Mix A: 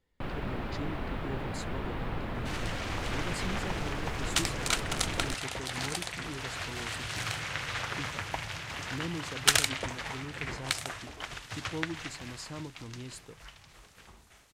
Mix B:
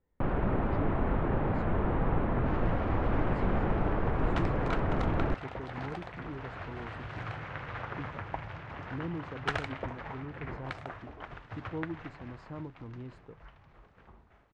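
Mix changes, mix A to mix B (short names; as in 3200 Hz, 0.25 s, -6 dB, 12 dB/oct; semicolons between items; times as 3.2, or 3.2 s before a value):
first sound +7.0 dB; master: add LPF 1300 Hz 12 dB/oct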